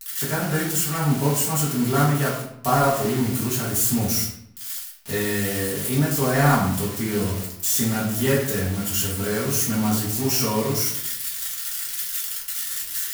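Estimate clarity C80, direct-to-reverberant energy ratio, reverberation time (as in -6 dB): 7.5 dB, -8.0 dB, 0.75 s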